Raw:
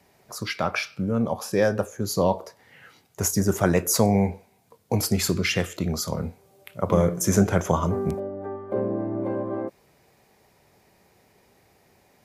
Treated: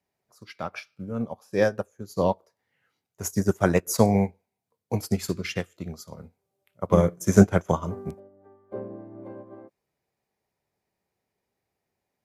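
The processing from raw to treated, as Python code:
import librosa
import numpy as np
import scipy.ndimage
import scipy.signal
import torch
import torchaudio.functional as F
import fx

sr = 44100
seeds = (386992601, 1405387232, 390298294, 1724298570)

y = fx.upward_expand(x, sr, threshold_db=-33.0, expansion=2.5)
y = y * 10.0 ** (5.5 / 20.0)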